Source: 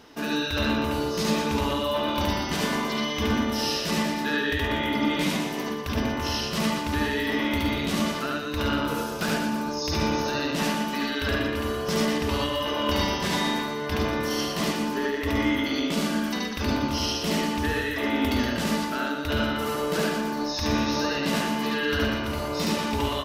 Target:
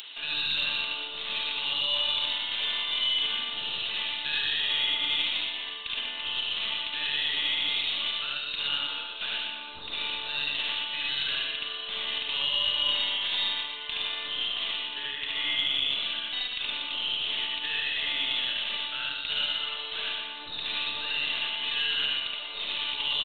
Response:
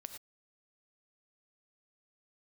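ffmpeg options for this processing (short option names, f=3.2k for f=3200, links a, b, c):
-filter_complex "[0:a]acrossover=split=2400[a][b];[a]aderivative[c];[b]alimiter=level_in=4dB:limit=-24dB:level=0:latency=1,volume=-4dB[d];[c][d]amix=inputs=2:normalize=0,highpass=f=390:p=1[e];[1:a]atrim=start_sample=2205[f];[e][f]afir=irnorm=-1:irlink=0,aeval=exprs='0.0376*(cos(1*acos(clip(val(0)/0.0376,-1,1)))-cos(1*PI/2))+0.00422*(cos(4*acos(clip(val(0)/0.0376,-1,1)))-cos(4*PI/2))':c=same,aresample=8000,aresample=44100,acompressor=mode=upward:threshold=-50dB:ratio=2.5,aexciter=amount=1.8:drive=8.4:freq=2.7k,volume=8.5dB"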